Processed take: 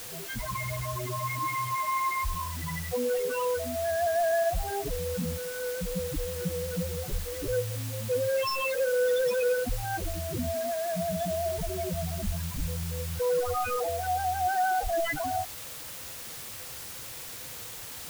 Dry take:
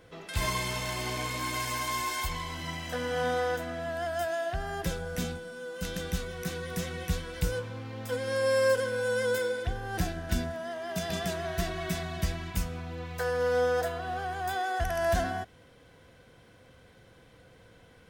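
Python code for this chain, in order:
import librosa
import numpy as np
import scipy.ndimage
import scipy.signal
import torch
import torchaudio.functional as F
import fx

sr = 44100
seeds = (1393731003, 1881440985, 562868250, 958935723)

y = (np.mod(10.0 ** (24.5 / 20.0) * x + 1.0, 2.0) - 1.0) / 10.0 ** (24.5 / 20.0)
y = fx.spec_topn(y, sr, count=4)
y = fx.quant_dither(y, sr, seeds[0], bits=8, dither='triangular')
y = F.gain(torch.from_numpy(y), 7.0).numpy()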